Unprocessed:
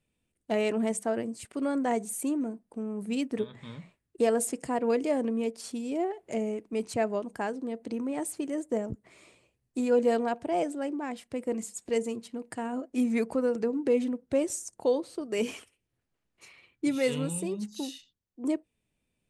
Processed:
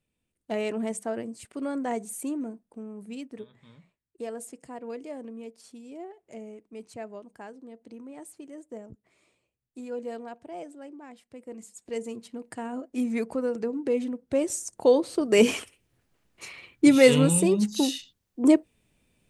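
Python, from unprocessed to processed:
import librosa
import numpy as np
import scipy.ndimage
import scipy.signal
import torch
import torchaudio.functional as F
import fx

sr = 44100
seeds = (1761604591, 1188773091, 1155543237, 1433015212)

y = fx.gain(x, sr, db=fx.line((2.49, -2.0), (3.5, -11.0), (11.44, -11.0), (12.26, -1.0), (14.13, -1.0), (15.36, 11.0)))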